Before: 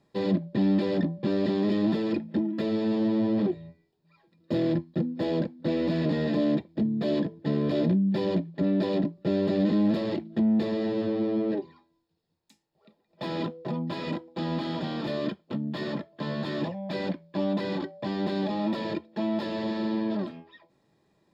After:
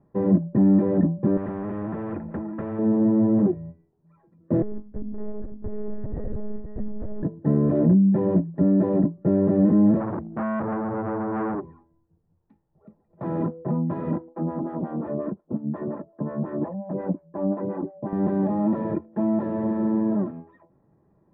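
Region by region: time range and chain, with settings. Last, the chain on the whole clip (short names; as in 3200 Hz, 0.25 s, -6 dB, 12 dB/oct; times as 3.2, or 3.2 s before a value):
1.37–2.79 LPF 2600 Hz 24 dB/oct + compressor 2:1, threshold -35 dBFS + spectral compressor 2:1
4.62–7.23 compressor 5:1, threshold -36 dBFS + echo 0.524 s -6 dB + monotone LPC vocoder at 8 kHz 210 Hz
10–13.26 low shelf 120 Hz +8.5 dB + phaser 1.4 Hz, delay 2.8 ms, feedback 25% + core saturation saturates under 1700 Hz
14.29–18.13 LPF 2500 Hz 6 dB/oct + photocell phaser 5.6 Hz
whole clip: LPF 1400 Hz 24 dB/oct; low shelf 200 Hz +9.5 dB; gain +2 dB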